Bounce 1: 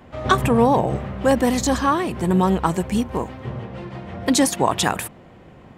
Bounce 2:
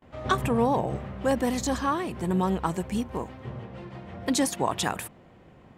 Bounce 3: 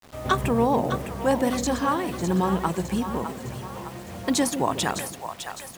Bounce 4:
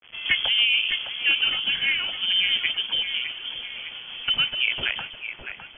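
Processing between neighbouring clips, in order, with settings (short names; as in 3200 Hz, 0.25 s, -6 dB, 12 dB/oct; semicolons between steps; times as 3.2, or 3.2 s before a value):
gate with hold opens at -40 dBFS; gain -7.5 dB
split-band echo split 570 Hz, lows 0.142 s, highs 0.608 s, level -8.5 dB; bit-crush 8-bit; gain +2 dB
inverted band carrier 3300 Hz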